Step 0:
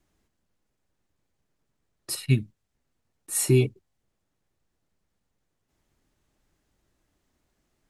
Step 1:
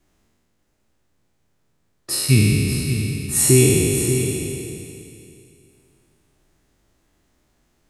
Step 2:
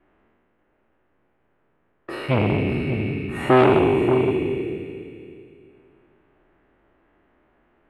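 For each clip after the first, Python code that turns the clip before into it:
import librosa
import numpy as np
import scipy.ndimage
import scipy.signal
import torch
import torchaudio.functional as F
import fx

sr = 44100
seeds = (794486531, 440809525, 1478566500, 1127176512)

y1 = fx.spec_trails(x, sr, decay_s=2.65)
y1 = y1 + 10.0 ** (-9.0 / 20.0) * np.pad(y1, (int(586 * sr / 1000.0), 0))[:len(y1)]
y1 = F.gain(torch.from_numpy(y1), 4.5).numpy()
y2 = fx.curve_eq(y1, sr, hz=(140.0, 360.0, 1600.0, 2900.0, 5500.0), db=(0, 10, 10, 2, -30))
y2 = fx.transformer_sat(y2, sr, knee_hz=1000.0)
y2 = F.gain(torch.from_numpy(y2), -3.0).numpy()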